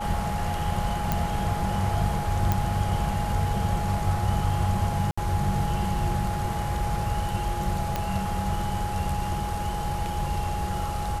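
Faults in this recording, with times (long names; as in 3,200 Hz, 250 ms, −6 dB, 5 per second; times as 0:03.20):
whistle 830 Hz −31 dBFS
0:01.12: click
0:02.52: click
0:05.11–0:05.17: drop-out 65 ms
0:07.96: click −12 dBFS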